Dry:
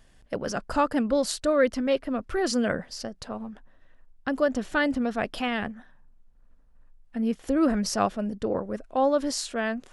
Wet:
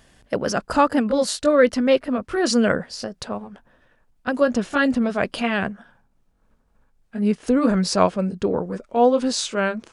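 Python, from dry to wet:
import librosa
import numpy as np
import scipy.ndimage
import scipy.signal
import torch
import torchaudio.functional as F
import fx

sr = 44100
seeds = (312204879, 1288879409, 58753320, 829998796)

y = fx.pitch_glide(x, sr, semitones=-2.0, runs='starting unshifted')
y = fx.highpass(y, sr, hz=85.0, slope=6)
y = y * 10.0 ** (7.5 / 20.0)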